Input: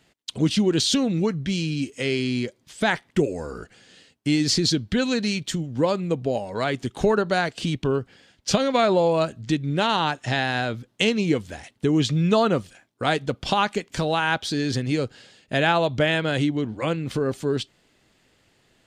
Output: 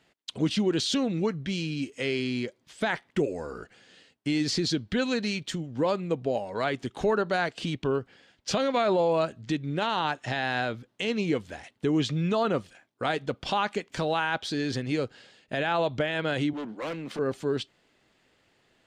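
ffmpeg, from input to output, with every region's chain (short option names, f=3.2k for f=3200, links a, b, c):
-filter_complex "[0:a]asettb=1/sr,asplit=3[a][b][c];[a]atrim=end=16.534[d];[b]atrim=start=16.53:end=17.19,asetpts=PTS-STARTPTS,afade=t=in:d=0.004:c=qsin,afade=t=out:st=0.656:d=0.004:c=qsin,highpass=f=170:w=0.5412,highpass=f=170:w=1.3066,asoftclip=type=hard:threshold=-27.5dB[e];[c]atrim=start=17.186[f];[d][e]acrossfade=d=0.004:c1=hsin:c2=qsin[g];[g][f]acrossfade=d=0.004:c1=qsin:c2=hsin,lowshelf=f=230:g=-7.5,alimiter=limit=-14.5dB:level=0:latency=1:release=11,highshelf=f=5.3k:g=-9.5,volume=-1.5dB"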